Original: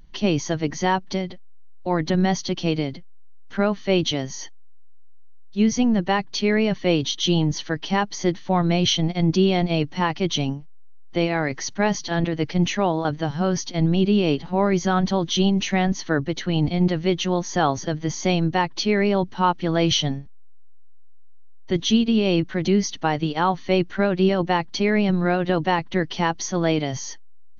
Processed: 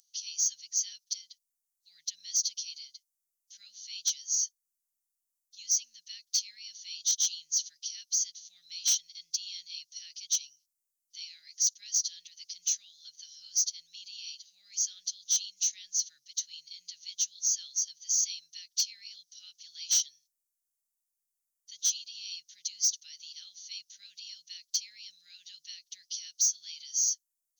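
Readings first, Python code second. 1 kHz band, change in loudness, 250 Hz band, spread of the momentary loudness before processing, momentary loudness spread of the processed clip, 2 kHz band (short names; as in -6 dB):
under -40 dB, -8.5 dB, under -40 dB, 7 LU, 19 LU, -27.0 dB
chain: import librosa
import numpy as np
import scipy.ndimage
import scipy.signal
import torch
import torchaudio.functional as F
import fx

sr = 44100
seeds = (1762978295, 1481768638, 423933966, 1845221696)

p1 = scipy.signal.sosfilt(scipy.signal.cheby2(4, 80, 1100.0, 'highpass', fs=sr, output='sos'), x)
p2 = fx.fold_sine(p1, sr, drive_db=10, ceiling_db=-20.0)
y = p1 + (p2 * librosa.db_to_amplitude(-4.0))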